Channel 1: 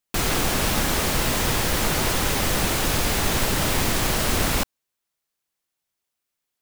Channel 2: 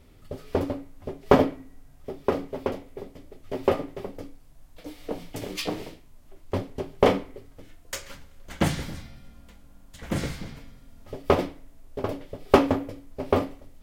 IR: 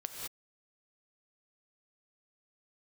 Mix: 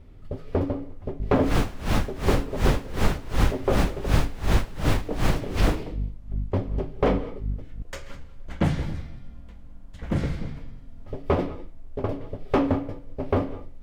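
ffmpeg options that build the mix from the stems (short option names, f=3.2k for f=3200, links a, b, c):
-filter_complex "[0:a]alimiter=limit=-14dB:level=0:latency=1:release=106,aeval=exprs='val(0)+0.0224*(sin(2*PI*50*n/s)+sin(2*PI*2*50*n/s)/2+sin(2*PI*3*50*n/s)/3+sin(2*PI*4*50*n/s)/4+sin(2*PI*5*50*n/s)/5)':c=same,aeval=exprs='val(0)*pow(10,-23*(0.5-0.5*cos(2*PI*2.7*n/s))/20)':c=same,adelay=1200,volume=3dB[a];[1:a]asoftclip=type=tanh:threshold=-16dB,volume=-1dB,asplit=2[b][c];[c]volume=-11dB[d];[2:a]atrim=start_sample=2205[e];[d][e]afir=irnorm=-1:irlink=0[f];[a][b][f]amix=inputs=3:normalize=0,lowpass=f=2k:p=1,lowshelf=f=150:g=8"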